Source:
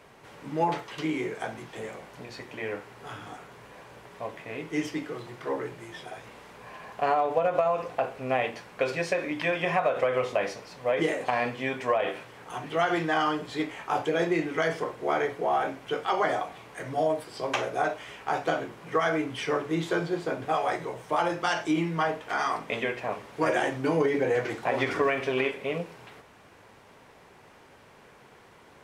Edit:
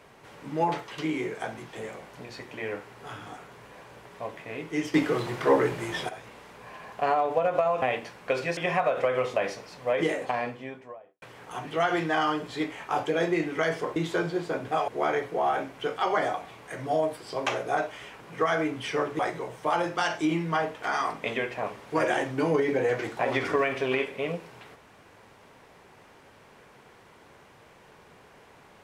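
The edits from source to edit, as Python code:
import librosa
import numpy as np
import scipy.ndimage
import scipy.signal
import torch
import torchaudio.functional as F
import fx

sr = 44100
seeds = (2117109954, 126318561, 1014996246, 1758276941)

y = fx.studio_fade_out(x, sr, start_s=11.02, length_s=1.19)
y = fx.edit(y, sr, fx.clip_gain(start_s=4.94, length_s=1.15, db=10.0),
    fx.cut(start_s=7.82, length_s=0.51),
    fx.cut(start_s=9.08, length_s=0.48),
    fx.cut(start_s=18.27, length_s=0.47),
    fx.move(start_s=19.73, length_s=0.92, to_s=14.95), tone=tone)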